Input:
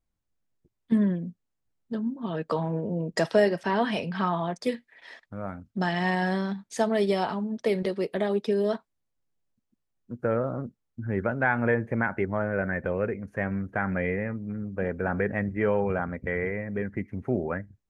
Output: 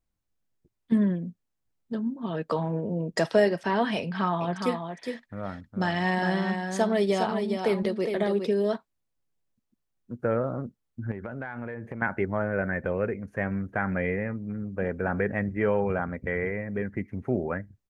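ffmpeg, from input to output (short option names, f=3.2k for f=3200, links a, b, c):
-filter_complex "[0:a]asplit=3[a][b][c];[a]afade=t=out:st=4.4:d=0.02[d];[b]aecho=1:1:410:0.501,afade=t=in:st=4.4:d=0.02,afade=t=out:st=8.51:d=0.02[e];[c]afade=t=in:st=8.51:d=0.02[f];[d][e][f]amix=inputs=3:normalize=0,asettb=1/sr,asplit=3[g][h][i];[g]atrim=end=11.114[j];[h]atrim=start=11.11:end=12.02,asetpts=PTS-STARTPTS,afade=t=in:d=0.004:c=qsin,afade=t=out:st=0.906:d=0.004:c=qsin,acompressor=threshold=-31dB:ratio=16:attack=3.2:release=140:knee=1:detection=peak[k];[i]atrim=start=12.016[l];[j][k]acrossfade=d=0.004:c1=hsin:c2=qsin[m];[m][l]acrossfade=d=0.004:c1=qsin:c2=hsin"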